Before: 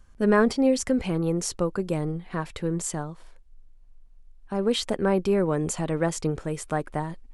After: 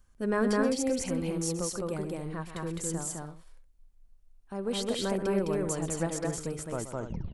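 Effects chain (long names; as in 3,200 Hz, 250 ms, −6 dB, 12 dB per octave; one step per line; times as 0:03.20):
turntable brake at the end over 0.69 s
high-shelf EQ 8,000 Hz +10.5 dB
loudspeakers that aren't time-aligned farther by 44 metres −12 dB, 72 metres −1 dB, 95 metres −10 dB
level −9 dB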